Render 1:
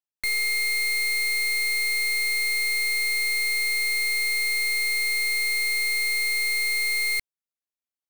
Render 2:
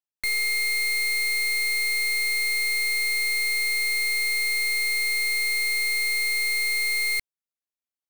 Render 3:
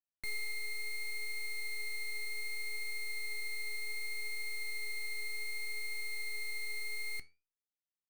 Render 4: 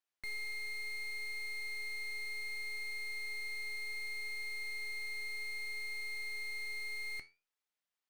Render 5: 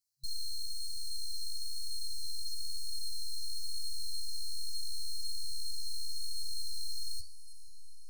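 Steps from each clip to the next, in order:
no audible change
tilt shelf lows +5 dB, about 690 Hz; gain riding 0.5 s; flange 0.66 Hz, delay 9.9 ms, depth 5 ms, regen +77%; trim -8 dB
overdrive pedal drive 18 dB, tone 3.2 kHz, clips at -30.5 dBFS; trim -4.5 dB
FFT band-reject 130–4000 Hz; echo that smears into a reverb 515 ms, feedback 66%, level -16 dB; chorus voices 2, 1 Hz, delay 11 ms, depth 3 ms; trim +12 dB

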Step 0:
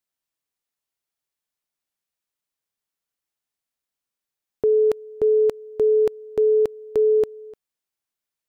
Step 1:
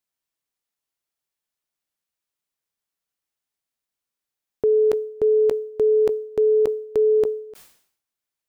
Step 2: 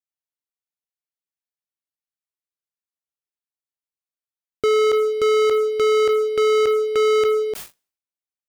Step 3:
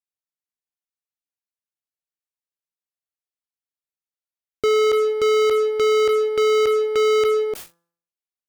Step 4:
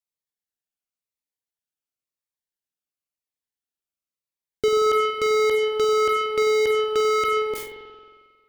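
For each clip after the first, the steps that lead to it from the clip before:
decay stretcher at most 95 dB/s
peaking EQ 74 Hz +3 dB 0.23 oct; waveshaping leveller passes 5; trim -3 dB
Chebyshev shaper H 2 -32 dB, 6 -36 dB, 7 -25 dB, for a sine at -15 dBFS; de-hum 169.7 Hz, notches 10
spring tank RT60 1.7 s, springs 45 ms, chirp 45 ms, DRR 3.5 dB; Shepard-style phaser falling 0.95 Hz

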